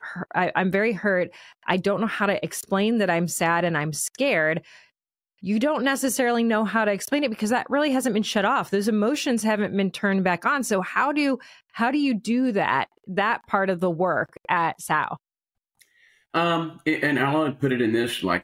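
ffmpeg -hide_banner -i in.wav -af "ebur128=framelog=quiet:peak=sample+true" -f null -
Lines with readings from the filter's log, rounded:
Integrated loudness:
  I:         -23.4 LUFS
  Threshold: -33.7 LUFS
Loudness range:
  LRA:         2.8 LU
  Threshold: -43.8 LUFS
  LRA low:   -25.5 LUFS
  LRA high:  -22.8 LUFS
Sample peak:
  Peak:       -5.3 dBFS
True peak:
  Peak:       -5.3 dBFS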